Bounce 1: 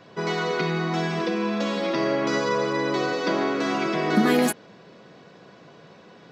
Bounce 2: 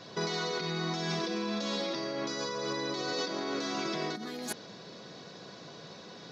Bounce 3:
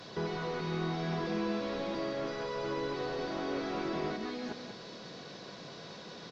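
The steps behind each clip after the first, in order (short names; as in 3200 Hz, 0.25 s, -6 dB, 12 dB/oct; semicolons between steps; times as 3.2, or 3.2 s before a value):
band shelf 4900 Hz +10.5 dB 1.1 oct; negative-ratio compressor -29 dBFS, ratio -1; gain -5.5 dB
delta modulation 32 kbps, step -49.5 dBFS; echo 0.19 s -7.5 dB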